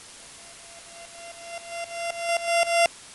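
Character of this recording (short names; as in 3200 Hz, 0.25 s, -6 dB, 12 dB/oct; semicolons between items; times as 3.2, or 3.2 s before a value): a buzz of ramps at a fixed pitch in blocks of 16 samples; tremolo saw up 3.8 Hz, depth 90%; a quantiser's noise floor 8-bit, dither triangular; MP3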